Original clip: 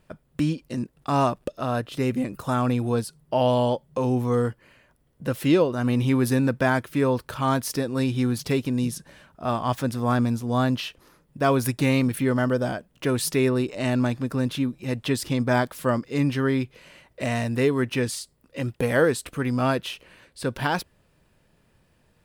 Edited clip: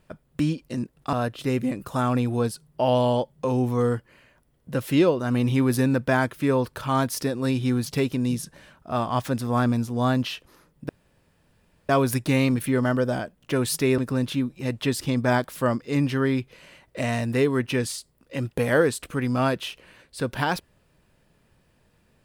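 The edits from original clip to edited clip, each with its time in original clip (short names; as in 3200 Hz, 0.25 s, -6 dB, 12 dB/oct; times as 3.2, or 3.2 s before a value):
1.13–1.66 cut
11.42 insert room tone 1.00 s
13.51–14.21 cut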